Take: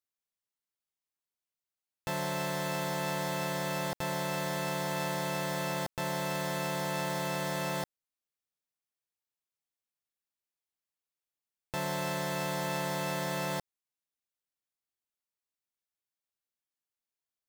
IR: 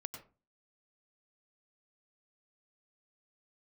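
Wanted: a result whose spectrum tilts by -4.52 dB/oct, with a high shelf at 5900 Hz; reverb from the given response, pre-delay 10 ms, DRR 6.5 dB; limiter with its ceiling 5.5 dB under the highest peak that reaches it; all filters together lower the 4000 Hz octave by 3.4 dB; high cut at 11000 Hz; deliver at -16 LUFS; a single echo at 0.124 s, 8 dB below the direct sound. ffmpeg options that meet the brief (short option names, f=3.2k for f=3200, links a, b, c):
-filter_complex "[0:a]lowpass=11k,equalizer=f=4k:t=o:g=-7.5,highshelf=f=5.9k:g=8.5,alimiter=level_in=1.5dB:limit=-24dB:level=0:latency=1,volume=-1.5dB,aecho=1:1:124:0.398,asplit=2[a][b];[1:a]atrim=start_sample=2205,adelay=10[c];[b][c]afir=irnorm=-1:irlink=0,volume=-4dB[d];[a][d]amix=inputs=2:normalize=0,volume=18dB"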